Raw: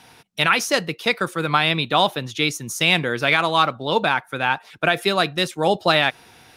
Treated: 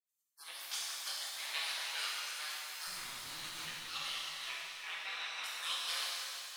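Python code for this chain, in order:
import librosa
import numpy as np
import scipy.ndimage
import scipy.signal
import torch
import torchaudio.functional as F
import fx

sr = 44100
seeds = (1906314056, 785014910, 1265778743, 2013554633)

y = fx.fade_in_head(x, sr, length_s=1.02)
y = fx.lowpass(y, sr, hz=1200.0, slope=12, at=(4.47, 5.44))
y = fx.spec_gate(y, sr, threshold_db=-25, keep='weak')
y = scipy.signal.sosfilt(scipy.signal.butter(2, 880.0, 'highpass', fs=sr, output='sos'), y)
y = fx.tube_stage(y, sr, drive_db=41.0, bias=0.8, at=(2.87, 3.65))
y = fx.echo_feedback(y, sr, ms=324, feedback_pct=54, wet_db=-12.5)
y = fx.rev_shimmer(y, sr, seeds[0], rt60_s=2.1, semitones=7, shimmer_db=-8, drr_db=-5.5)
y = F.gain(torch.from_numpy(y), -5.0).numpy()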